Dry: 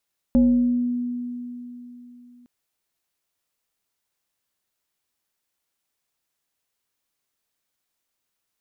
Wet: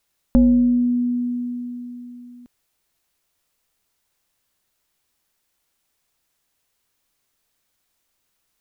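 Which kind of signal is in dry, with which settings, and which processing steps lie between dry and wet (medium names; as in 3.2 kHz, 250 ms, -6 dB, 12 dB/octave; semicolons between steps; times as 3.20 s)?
FM tone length 2.11 s, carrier 244 Hz, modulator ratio 1.21, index 0.5, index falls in 1.07 s exponential, decay 3.48 s, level -12 dB
bass shelf 68 Hz +9 dB; in parallel at +2 dB: compression, threshold -27 dBFS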